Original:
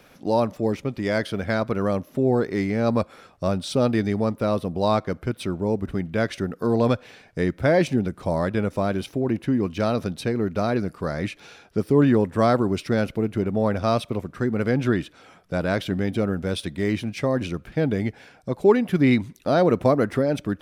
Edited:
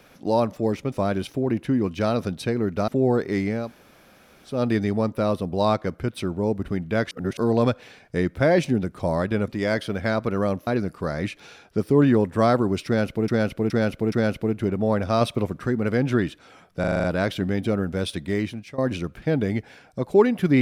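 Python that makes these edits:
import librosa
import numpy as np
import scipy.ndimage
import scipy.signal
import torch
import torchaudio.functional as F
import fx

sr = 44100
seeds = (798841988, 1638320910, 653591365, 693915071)

y = fx.edit(x, sr, fx.swap(start_s=0.92, length_s=1.19, other_s=8.71, other_length_s=1.96),
    fx.room_tone_fill(start_s=2.83, length_s=0.96, crossfade_s=0.24),
    fx.reverse_span(start_s=6.34, length_s=0.26),
    fx.repeat(start_s=12.86, length_s=0.42, count=4),
    fx.clip_gain(start_s=13.95, length_s=0.46, db=3.0),
    fx.stutter(start_s=15.54, slice_s=0.04, count=7),
    fx.fade_out_to(start_s=16.81, length_s=0.47, floor_db=-18.0), tone=tone)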